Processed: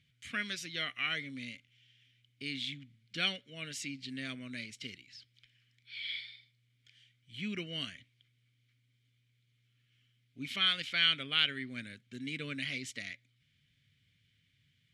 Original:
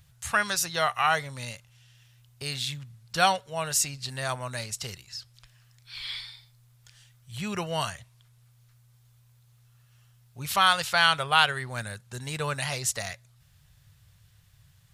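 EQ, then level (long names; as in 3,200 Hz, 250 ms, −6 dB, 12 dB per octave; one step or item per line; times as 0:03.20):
formant filter i
+8.0 dB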